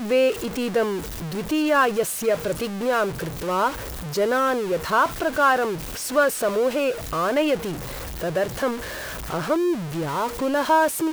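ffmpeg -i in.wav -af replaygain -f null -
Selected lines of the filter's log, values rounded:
track_gain = +2.8 dB
track_peak = 0.305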